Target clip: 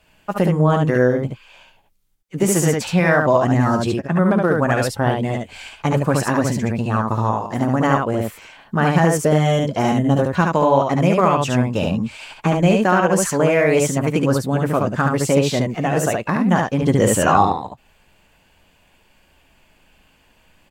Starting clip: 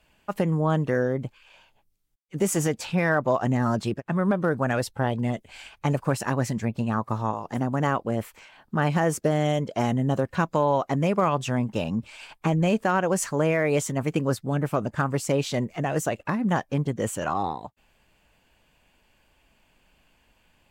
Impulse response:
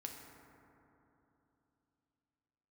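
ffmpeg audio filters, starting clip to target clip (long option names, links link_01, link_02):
-filter_complex "[0:a]asettb=1/sr,asplit=3[link_01][link_02][link_03];[link_01]atrim=end=16.824[link_04];[link_02]atrim=start=16.82:end=17.45,asetpts=PTS-STARTPTS,afade=type=in:duration=0.004:curve=qsin,afade=type=out:start_time=0.626:duration=0.004:curve=qsin,acontrast=38[link_05];[link_03]atrim=start=17.446[link_06];[link_04][link_05]acrossfade=duration=0.004:curve1=hsin:curve2=qsin[link_07];[link_07][link_06]acrossfade=duration=0.004:curve1=qsin:curve2=hsin,aecho=1:1:11|58|72:0.299|0.178|0.708,volume=5.5dB"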